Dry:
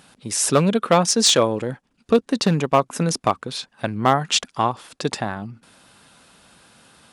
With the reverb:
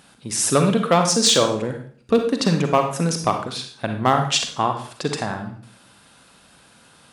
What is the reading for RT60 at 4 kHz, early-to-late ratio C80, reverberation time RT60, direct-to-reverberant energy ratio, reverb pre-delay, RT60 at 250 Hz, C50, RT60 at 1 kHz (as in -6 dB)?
0.45 s, 10.5 dB, 0.50 s, 5.0 dB, 36 ms, 0.55 s, 6.5 dB, 0.50 s